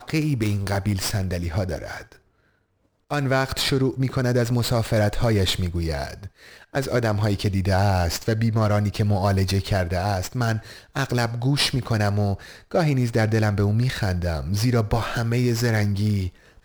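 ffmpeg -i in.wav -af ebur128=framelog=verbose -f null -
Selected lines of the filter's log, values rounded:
Integrated loudness:
  I:         -23.1 LUFS
  Threshold: -33.5 LUFS
Loudness range:
  LRA:         3.4 LU
  Threshold: -43.4 LUFS
  LRA low:   -25.7 LUFS
  LRA high:  -22.3 LUFS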